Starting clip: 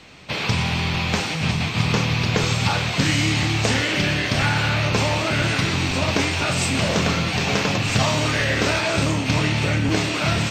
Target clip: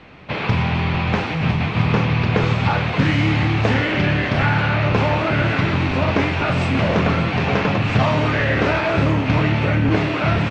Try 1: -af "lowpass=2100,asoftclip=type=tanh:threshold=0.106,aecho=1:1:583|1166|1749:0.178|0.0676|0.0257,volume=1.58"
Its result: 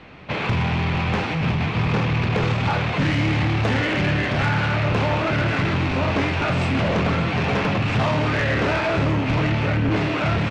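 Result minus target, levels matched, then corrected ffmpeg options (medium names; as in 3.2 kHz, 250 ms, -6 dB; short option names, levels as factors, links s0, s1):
saturation: distortion +16 dB
-af "lowpass=2100,asoftclip=type=tanh:threshold=0.422,aecho=1:1:583|1166|1749:0.178|0.0676|0.0257,volume=1.58"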